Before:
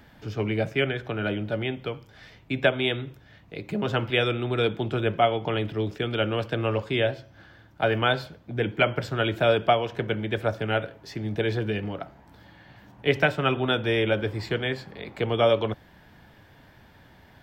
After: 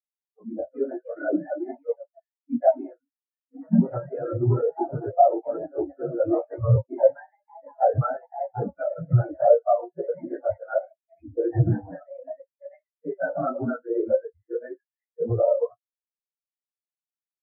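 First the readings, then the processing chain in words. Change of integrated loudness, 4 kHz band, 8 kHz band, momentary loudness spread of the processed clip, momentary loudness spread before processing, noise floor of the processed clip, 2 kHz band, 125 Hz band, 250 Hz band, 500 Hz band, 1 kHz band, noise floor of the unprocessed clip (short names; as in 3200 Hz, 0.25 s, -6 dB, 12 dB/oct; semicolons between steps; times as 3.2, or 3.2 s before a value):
+1.0 dB, under -40 dB, n/a, 14 LU, 12 LU, under -85 dBFS, -15.0 dB, +2.5 dB, +1.0 dB, +2.0 dB, +1.5 dB, -54 dBFS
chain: phase scrambler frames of 50 ms; low shelf 150 Hz -3.5 dB; limiter -18 dBFS, peak gain reduction 10 dB; LPF 1400 Hz 24 dB/oct; doubler 17 ms -6.5 dB; echoes that change speed 0.417 s, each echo +3 st, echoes 2, each echo -6 dB; dynamic EQ 420 Hz, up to -5 dB, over -42 dBFS, Q 2.9; HPF 54 Hz 24 dB/oct; spectral noise reduction 30 dB; AGC gain up to 15.5 dB; spectral expander 2.5:1; gain -3 dB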